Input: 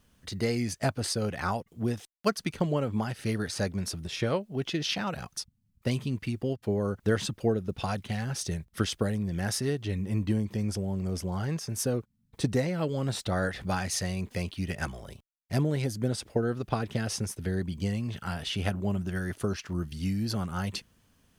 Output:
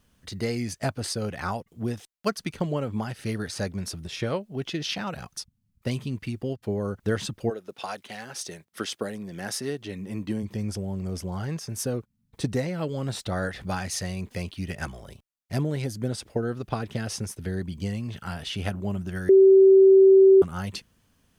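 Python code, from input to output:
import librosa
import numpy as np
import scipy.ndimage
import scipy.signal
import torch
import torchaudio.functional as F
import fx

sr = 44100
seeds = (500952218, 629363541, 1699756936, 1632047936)

y = fx.highpass(x, sr, hz=fx.line((7.49, 490.0), (10.42, 150.0)), slope=12, at=(7.49, 10.42), fade=0.02)
y = fx.edit(y, sr, fx.bleep(start_s=19.29, length_s=1.13, hz=385.0, db=-10.5), tone=tone)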